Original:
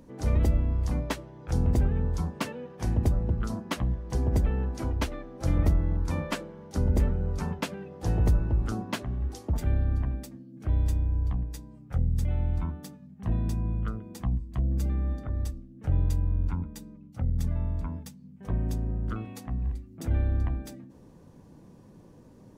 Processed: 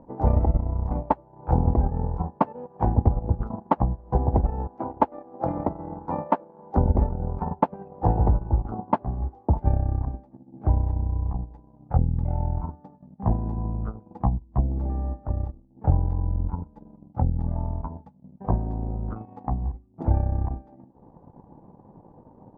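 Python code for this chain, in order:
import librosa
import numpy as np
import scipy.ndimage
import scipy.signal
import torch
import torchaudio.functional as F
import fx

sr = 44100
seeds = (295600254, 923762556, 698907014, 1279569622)

y = fx.highpass(x, sr, hz=190.0, slope=12, at=(4.67, 6.77))
y = fx.transient(y, sr, attack_db=8, sustain_db=-12)
y = fx.lowpass_res(y, sr, hz=850.0, q=4.8)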